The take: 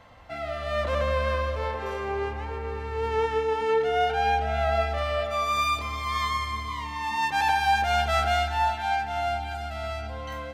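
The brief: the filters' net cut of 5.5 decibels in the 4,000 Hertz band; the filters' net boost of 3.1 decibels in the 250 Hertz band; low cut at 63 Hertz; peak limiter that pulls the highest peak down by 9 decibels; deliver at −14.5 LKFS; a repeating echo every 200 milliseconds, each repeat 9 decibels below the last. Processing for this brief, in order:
high-pass filter 63 Hz
parametric band 250 Hz +4 dB
parametric band 4,000 Hz −7.5 dB
brickwall limiter −22 dBFS
repeating echo 200 ms, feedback 35%, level −9 dB
level +15.5 dB

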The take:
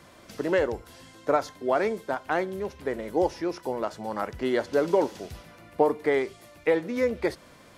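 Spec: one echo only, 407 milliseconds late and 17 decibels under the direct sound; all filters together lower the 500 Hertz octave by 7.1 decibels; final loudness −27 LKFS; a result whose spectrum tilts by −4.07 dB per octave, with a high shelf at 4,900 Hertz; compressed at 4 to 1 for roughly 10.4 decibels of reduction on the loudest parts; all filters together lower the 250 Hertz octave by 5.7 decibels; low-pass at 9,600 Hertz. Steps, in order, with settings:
low-pass filter 9,600 Hz
parametric band 250 Hz −4.5 dB
parametric band 500 Hz −7.5 dB
high-shelf EQ 4,900 Hz +8.5 dB
downward compressor 4 to 1, threshold −35 dBFS
single-tap delay 407 ms −17 dB
level +13 dB

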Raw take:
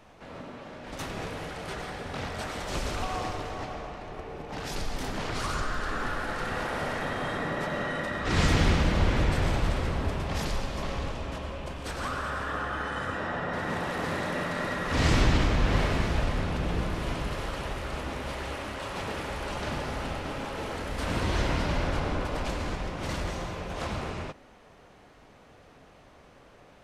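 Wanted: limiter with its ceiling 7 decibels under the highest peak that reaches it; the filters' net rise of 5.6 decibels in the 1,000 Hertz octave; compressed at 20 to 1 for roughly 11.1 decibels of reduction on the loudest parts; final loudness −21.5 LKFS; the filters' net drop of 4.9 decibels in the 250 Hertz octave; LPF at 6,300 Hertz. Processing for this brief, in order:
low-pass filter 6,300 Hz
parametric band 250 Hz −7.5 dB
parametric band 1,000 Hz +7.5 dB
downward compressor 20 to 1, threshold −29 dBFS
level +14 dB
brickwall limiter −11.5 dBFS

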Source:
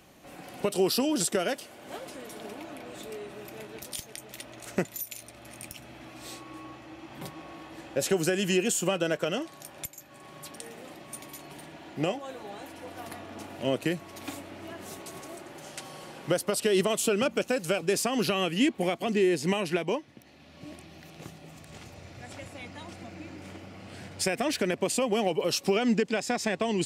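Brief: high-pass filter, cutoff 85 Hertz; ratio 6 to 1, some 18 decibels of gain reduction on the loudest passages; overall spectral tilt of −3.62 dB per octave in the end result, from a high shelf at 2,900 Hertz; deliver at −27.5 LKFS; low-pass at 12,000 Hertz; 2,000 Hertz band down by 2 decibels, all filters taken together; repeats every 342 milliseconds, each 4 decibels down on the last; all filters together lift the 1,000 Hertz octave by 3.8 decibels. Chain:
high-pass filter 85 Hz
low-pass filter 12,000 Hz
parametric band 1,000 Hz +6.5 dB
parametric band 2,000 Hz −9 dB
high-shelf EQ 2,900 Hz +9 dB
downward compressor 6 to 1, threshold −40 dBFS
repeating echo 342 ms, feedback 63%, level −4 dB
level +13.5 dB

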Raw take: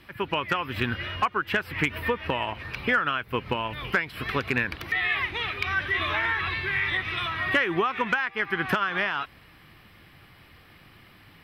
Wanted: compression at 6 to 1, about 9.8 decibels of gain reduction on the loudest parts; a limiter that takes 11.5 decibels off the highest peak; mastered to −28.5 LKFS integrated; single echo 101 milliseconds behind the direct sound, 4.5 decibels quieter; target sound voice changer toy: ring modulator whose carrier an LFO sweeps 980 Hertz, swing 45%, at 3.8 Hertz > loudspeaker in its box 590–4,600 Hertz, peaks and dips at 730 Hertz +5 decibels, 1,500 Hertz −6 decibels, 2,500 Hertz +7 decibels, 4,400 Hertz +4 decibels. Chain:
downward compressor 6 to 1, threshold −30 dBFS
brickwall limiter −27.5 dBFS
single-tap delay 101 ms −4.5 dB
ring modulator whose carrier an LFO sweeps 980 Hz, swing 45%, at 3.8 Hz
loudspeaker in its box 590–4,600 Hz, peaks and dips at 730 Hz +5 dB, 1,500 Hz −6 dB, 2,500 Hz +7 dB, 4,400 Hz +4 dB
level +7.5 dB

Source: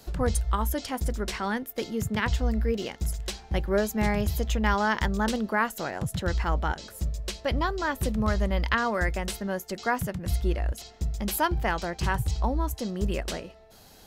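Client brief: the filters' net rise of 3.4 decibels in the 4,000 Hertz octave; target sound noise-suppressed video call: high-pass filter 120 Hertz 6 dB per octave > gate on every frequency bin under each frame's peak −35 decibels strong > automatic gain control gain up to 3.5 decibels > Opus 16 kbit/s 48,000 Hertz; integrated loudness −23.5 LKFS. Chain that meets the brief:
high-pass filter 120 Hz 6 dB per octave
parametric band 4,000 Hz +4.5 dB
gate on every frequency bin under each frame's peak −35 dB strong
automatic gain control gain up to 3.5 dB
level +6.5 dB
Opus 16 kbit/s 48,000 Hz

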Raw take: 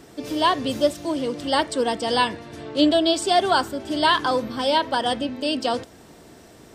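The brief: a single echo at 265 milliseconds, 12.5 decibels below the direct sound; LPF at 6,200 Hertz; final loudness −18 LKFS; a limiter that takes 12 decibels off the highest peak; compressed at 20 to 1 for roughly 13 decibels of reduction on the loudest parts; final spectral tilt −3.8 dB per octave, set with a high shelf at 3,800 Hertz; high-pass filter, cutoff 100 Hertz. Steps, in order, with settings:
high-pass filter 100 Hz
low-pass filter 6,200 Hz
high-shelf EQ 3,800 Hz +5 dB
downward compressor 20 to 1, threshold −26 dBFS
brickwall limiter −27.5 dBFS
single-tap delay 265 ms −12.5 dB
level +18 dB

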